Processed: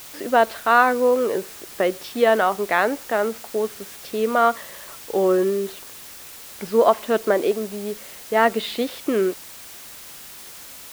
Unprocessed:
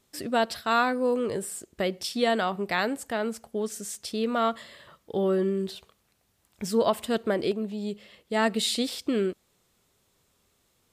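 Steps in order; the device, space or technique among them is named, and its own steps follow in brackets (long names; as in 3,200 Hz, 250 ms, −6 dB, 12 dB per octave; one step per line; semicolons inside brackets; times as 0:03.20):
wax cylinder (band-pass filter 350–2,000 Hz; tape wow and flutter; white noise bed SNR 18 dB)
level +9 dB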